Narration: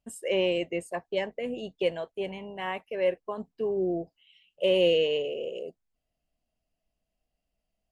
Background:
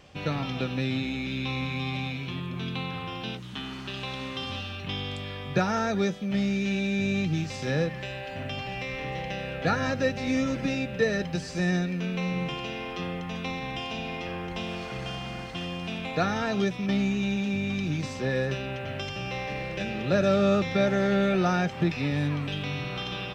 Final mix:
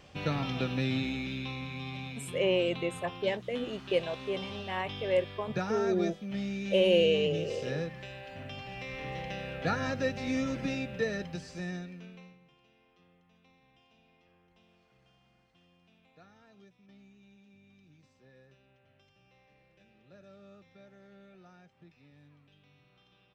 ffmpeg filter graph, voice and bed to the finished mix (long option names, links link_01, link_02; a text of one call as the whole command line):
ffmpeg -i stem1.wav -i stem2.wav -filter_complex "[0:a]adelay=2100,volume=-1.5dB[link_01];[1:a]volume=1.5dB,afade=type=out:start_time=1.03:duration=0.54:silence=0.473151,afade=type=in:start_time=8.66:duration=0.45:silence=0.668344,afade=type=out:start_time=10.74:duration=1.64:silence=0.0446684[link_02];[link_01][link_02]amix=inputs=2:normalize=0" out.wav